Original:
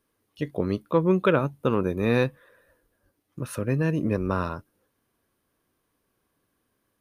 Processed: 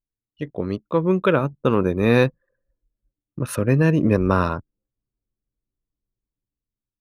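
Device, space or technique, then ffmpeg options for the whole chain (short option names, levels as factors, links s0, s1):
voice memo with heavy noise removal: -af "anlmdn=0.158,dynaudnorm=f=610:g=5:m=2.82"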